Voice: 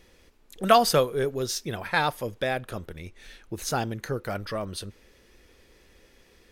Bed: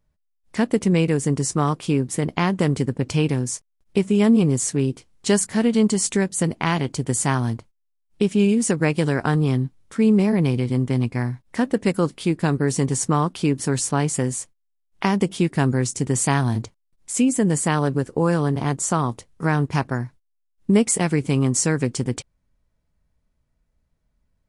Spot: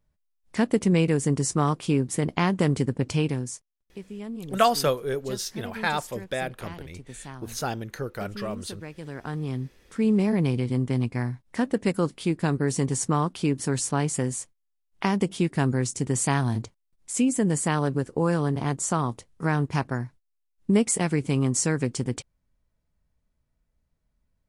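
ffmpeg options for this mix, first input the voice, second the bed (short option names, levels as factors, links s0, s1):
-filter_complex "[0:a]adelay=3900,volume=0.794[s0];[1:a]volume=4.73,afade=t=out:st=3.02:d=0.87:silence=0.133352,afade=t=in:st=8.97:d=1.34:silence=0.158489[s1];[s0][s1]amix=inputs=2:normalize=0"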